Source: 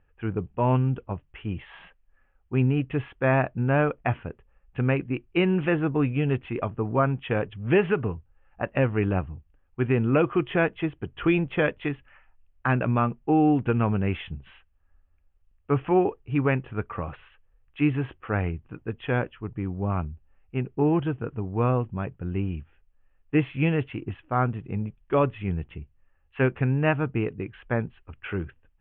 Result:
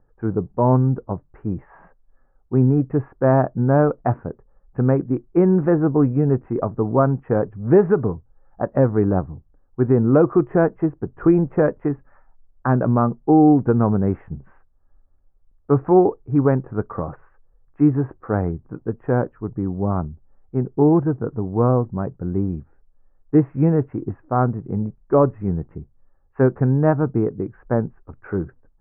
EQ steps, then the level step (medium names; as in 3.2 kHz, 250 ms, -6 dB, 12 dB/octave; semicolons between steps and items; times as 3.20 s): Bessel low-pass 850 Hz, order 8; peaking EQ 61 Hz -10 dB 1.4 oct; +8.5 dB